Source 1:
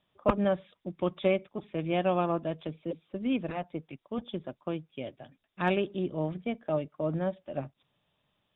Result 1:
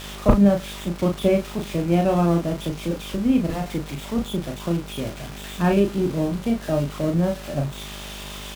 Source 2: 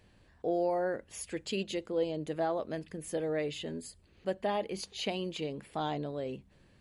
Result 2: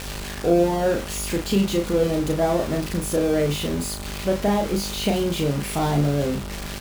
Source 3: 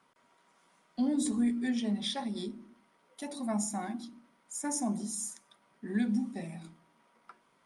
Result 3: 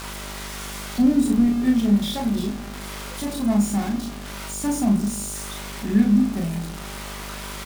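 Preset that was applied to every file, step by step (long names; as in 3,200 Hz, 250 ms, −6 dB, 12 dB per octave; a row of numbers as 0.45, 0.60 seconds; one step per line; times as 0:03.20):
spike at every zero crossing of −21 dBFS
RIAA equalisation playback
hum with harmonics 50 Hz, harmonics 31, −42 dBFS −5 dB per octave
double-tracking delay 35 ms −4 dB
loudness normalisation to −23 LKFS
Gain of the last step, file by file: +2.5, +7.0, +4.5 decibels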